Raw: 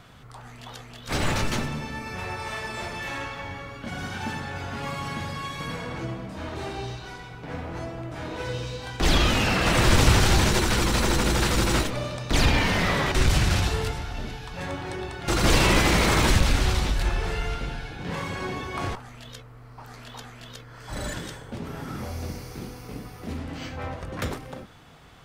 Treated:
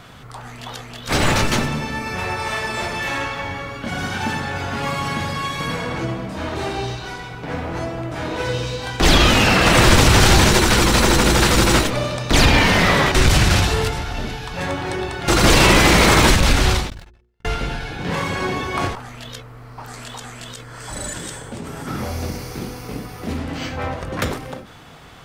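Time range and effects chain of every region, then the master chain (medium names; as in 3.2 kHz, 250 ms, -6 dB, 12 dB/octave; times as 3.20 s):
16.90–17.45 s: median filter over 3 samples + gate -21 dBFS, range -58 dB + hum notches 60/120/180/240/300/360/420/480 Hz
19.88–21.87 s: peaking EQ 8.1 kHz +11.5 dB 0.53 oct + compression 2:1, threshold -38 dBFS
whole clip: bass shelf 140 Hz -3.5 dB; loudness maximiser +10 dB; endings held to a fixed fall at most 100 dB/s; trim -1 dB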